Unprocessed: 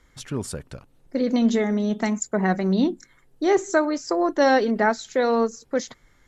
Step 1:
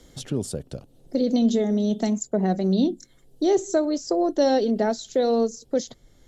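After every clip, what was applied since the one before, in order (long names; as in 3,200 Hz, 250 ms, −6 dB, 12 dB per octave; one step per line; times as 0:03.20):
flat-topped bell 1,500 Hz −13 dB
multiband upward and downward compressor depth 40%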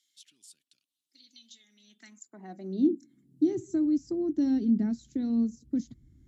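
drawn EQ curve 310 Hz 0 dB, 500 Hz −29 dB, 2,300 Hz −15 dB, 3,300 Hz −22 dB, 7,700 Hz −17 dB
high-pass filter sweep 3,400 Hz → 63 Hz, 0:01.61–0:03.91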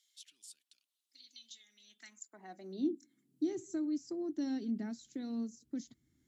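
high-pass filter 860 Hz 6 dB per octave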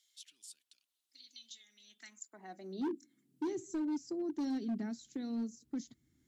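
gain into a clipping stage and back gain 33 dB
level +1 dB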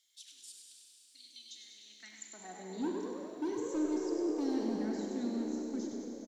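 echo with shifted repeats 99 ms, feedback 58%, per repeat +73 Hz, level −7 dB
four-comb reverb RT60 3.6 s, combs from 29 ms, DRR 1.5 dB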